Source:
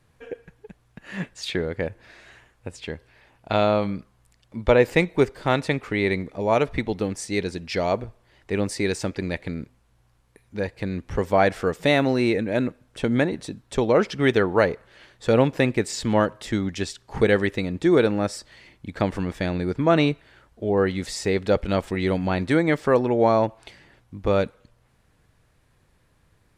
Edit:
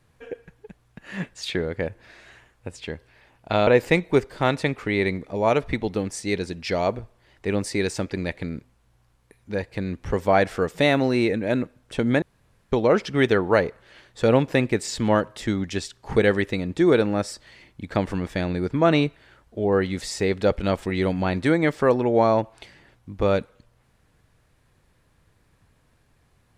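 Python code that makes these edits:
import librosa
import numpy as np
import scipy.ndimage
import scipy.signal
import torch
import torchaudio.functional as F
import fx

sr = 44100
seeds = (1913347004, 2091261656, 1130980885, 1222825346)

y = fx.edit(x, sr, fx.cut(start_s=3.67, length_s=1.05),
    fx.room_tone_fill(start_s=13.27, length_s=0.5), tone=tone)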